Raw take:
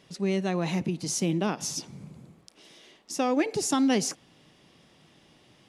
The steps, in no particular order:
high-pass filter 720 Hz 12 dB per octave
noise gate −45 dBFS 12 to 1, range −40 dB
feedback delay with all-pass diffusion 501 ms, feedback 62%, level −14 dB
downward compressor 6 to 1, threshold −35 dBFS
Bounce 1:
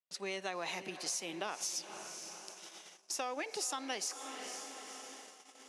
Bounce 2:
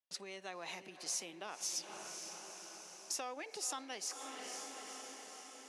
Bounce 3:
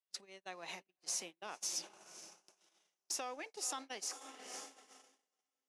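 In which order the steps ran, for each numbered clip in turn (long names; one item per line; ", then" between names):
feedback delay with all-pass diffusion, then noise gate, then high-pass filter, then downward compressor
noise gate, then feedback delay with all-pass diffusion, then downward compressor, then high-pass filter
feedback delay with all-pass diffusion, then downward compressor, then high-pass filter, then noise gate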